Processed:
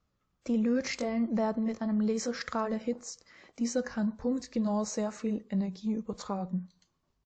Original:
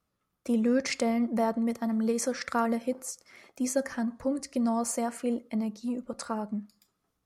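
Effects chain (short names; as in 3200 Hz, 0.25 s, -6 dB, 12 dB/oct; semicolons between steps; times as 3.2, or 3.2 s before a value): gliding pitch shift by -2.5 st starting unshifted; low shelf 100 Hz +10 dB; in parallel at +1.5 dB: limiter -24 dBFS, peak gain reduction 9.5 dB; on the sum: downsampling 16000 Hz; gain -7 dB; WMA 64 kbps 44100 Hz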